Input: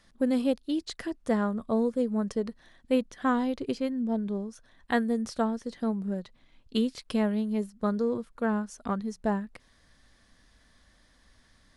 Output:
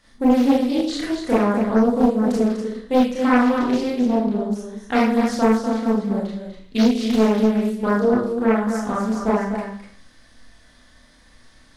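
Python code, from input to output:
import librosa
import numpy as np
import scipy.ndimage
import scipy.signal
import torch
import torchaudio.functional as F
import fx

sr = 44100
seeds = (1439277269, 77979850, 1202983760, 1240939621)

y = x + 10.0 ** (-7.5 / 20.0) * np.pad(x, (int(246 * sr / 1000.0), 0))[:len(x)]
y = fx.rev_schroeder(y, sr, rt60_s=0.53, comb_ms=25, drr_db=-6.5)
y = fx.doppler_dist(y, sr, depth_ms=0.63)
y = y * 10.0 ** (2.0 / 20.0)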